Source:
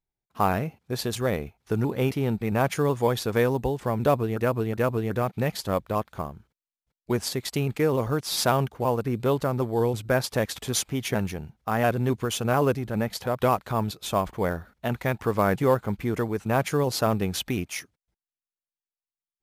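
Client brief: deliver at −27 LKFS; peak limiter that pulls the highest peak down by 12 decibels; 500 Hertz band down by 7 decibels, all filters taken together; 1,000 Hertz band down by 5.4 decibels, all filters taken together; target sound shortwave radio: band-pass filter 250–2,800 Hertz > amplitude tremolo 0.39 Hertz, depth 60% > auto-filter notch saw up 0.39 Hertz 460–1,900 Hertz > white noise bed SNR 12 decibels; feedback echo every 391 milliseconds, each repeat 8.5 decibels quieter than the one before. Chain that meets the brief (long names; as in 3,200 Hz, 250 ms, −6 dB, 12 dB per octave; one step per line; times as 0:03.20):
parametric band 500 Hz −7 dB
parametric band 1,000 Hz −4.5 dB
brickwall limiter −22.5 dBFS
band-pass filter 250–2,800 Hz
repeating echo 391 ms, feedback 38%, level −8.5 dB
amplitude tremolo 0.39 Hz, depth 60%
auto-filter notch saw up 0.39 Hz 460–1,900 Hz
white noise bed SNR 12 dB
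level +16 dB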